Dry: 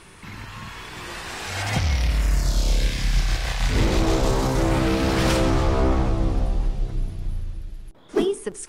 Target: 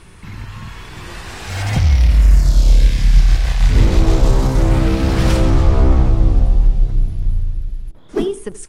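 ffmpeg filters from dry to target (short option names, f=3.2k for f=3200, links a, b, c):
-filter_complex "[0:a]asettb=1/sr,asplit=3[a][b][c];[a]atrim=end=1.504[d];[b]atrim=start=1.5:end=2.39,asetpts=PTS-STARTPTS,afade=t=in:d=0.004:c=qsin,afade=t=out:st=0.886:d=0.004:c=qsin,aeval=exprs='val(0)+0.5*0.0112*sgn(val(0))':c=same[e];[c]atrim=start=2.386[f];[d][e]acrossfade=d=0.004:c1=hsin:c2=qsin[g];[g][f]acrossfade=d=0.004:c1=qsin:c2=hsin,lowshelf=f=170:g=11.5,aecho=1:1:80:0.126"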